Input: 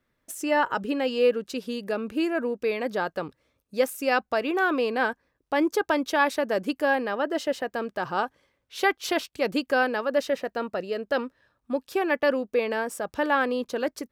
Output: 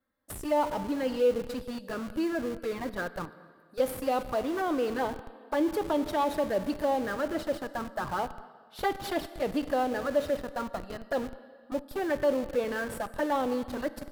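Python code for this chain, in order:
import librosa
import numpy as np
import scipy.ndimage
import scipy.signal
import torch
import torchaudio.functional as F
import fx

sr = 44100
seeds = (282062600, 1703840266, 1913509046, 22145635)

p1 = fx.graphic_eq_15(x, sr, hz=(100, 400, 2500, 6300), db=(7, -4, -12, -12))
p2 = fx.env_flanger(p1, sr, rest_ms=3.8, full_db=-22.0)
p3 = fx.low_shelf(p2, sr, hz=160.0, db=-12.0)
p4 = p3 + fx.echo_filtered(p3, sr, ms=210, feedback_pct=52, hz=1300.0, wet_db=-21, dry=0)
p5 = fx.rev_plate(p4, sr, seeds[0], rt60_s=1.8, hf_ratio=1.0, predelay_ms=0, drr_db=11.0)
p6 = fx.schmitt(p5, sr, flips_db=-37.5)
y = p5 + F.gain(torch.from_numpy(p6), -9.0).numpy()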